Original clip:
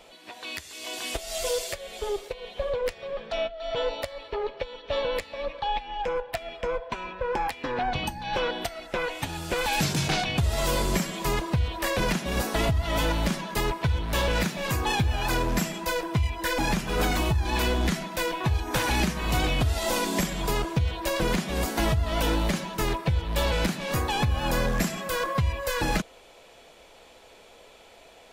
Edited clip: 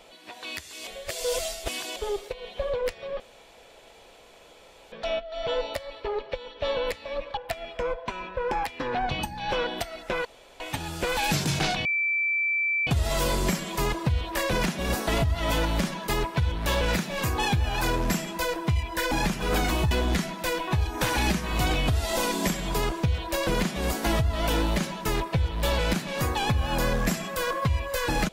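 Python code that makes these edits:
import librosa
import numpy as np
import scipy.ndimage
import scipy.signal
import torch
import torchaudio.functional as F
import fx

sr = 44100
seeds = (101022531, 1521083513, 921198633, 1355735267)

y = fx.edit(x, sr, fx.reverse_span(start_s=0.87, length_s=1.09),
    fx.insert_room_tone(at_s=3.2, length_s=1.72),
    fx.cut(start_s=5.65, length_s=0.56),
    fx.insert_room_tone(at_s=9.09, length_s=0.35),
    fx.insert_tone(at_s=10.34, length_s=1.02, hz=2330.0, db=-22.5),
    fx.cut(start_s=17.38, length_s=0.26), tone=tone)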